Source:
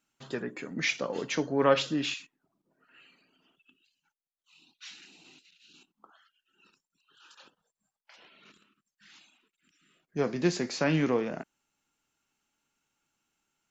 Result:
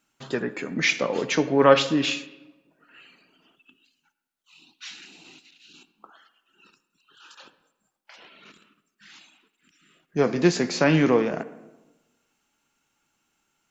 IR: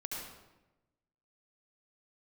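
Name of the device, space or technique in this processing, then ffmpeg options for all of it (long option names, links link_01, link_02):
filtered reverb send: -filter_complex "[0:a]asplit=2[link_01][link_02];[link_02]highpass=180,lowpass=3400[link_03];[1:a]atrim=start_sample=2205[link_04];[link_03][link_04]afir=irnorm=-1:irlink=0,volume=-13dB[link_05];[link_01][link_05]amix=inputs=2:normalize=0,volume=6.5dB"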